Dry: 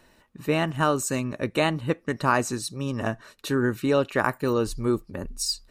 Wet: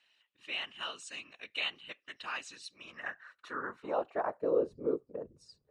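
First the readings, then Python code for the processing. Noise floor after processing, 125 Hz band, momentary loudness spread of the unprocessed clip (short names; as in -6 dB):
-78 dBFS, -29.0 dB, 7 LU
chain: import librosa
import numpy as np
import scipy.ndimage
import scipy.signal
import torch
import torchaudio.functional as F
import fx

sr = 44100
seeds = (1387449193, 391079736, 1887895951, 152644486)

y = scipy.signal.sosfilt(scipy.signal.ellip(4, 1.0, 40, 11000.0, 'lowpass', fs=sr, output='sos'), x)
y = fx.whisperise(y, sr, seeds[0])
y = fx.filter_sweep_bandpass(y, sr, from_hz=3000.0, to_hz=470.0, start_s=2.55, end_s=4.61, q=3.4)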